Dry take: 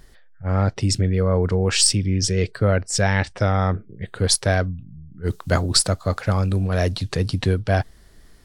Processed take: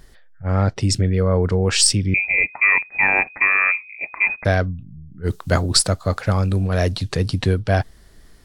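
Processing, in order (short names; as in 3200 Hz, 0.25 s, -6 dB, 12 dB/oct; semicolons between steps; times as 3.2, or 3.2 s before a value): 2.14–4.45 inverted band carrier 2500 Hz; gain +1.5 dB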